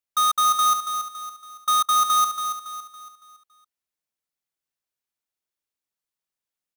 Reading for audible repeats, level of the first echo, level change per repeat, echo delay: 4, −8.0 dB, −7.5 dB, 280 ms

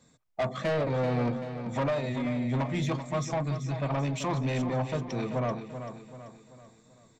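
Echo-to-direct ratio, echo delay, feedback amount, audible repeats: −8.5 dB, 386 ms, 45%, 4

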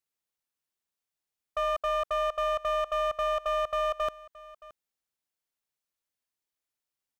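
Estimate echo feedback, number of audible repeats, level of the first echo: repeats not evenly spaced, 1, −20.0 dB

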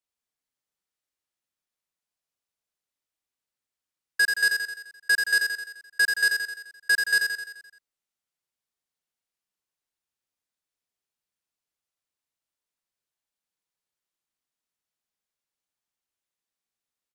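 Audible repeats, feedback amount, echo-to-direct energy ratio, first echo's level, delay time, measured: 6, 55%, −3.5 dB, −5.0 dB, 86 ms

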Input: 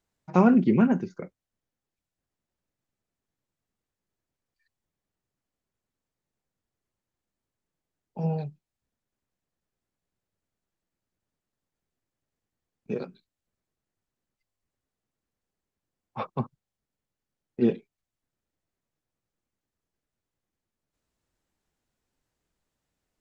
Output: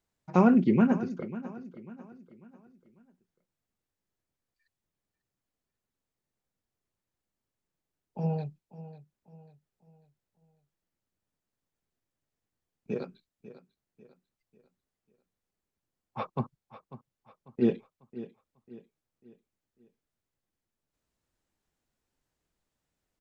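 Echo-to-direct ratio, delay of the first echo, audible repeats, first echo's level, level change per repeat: −14.5 dB, 545 ms, 3, −15.5 dB, −8.0 dB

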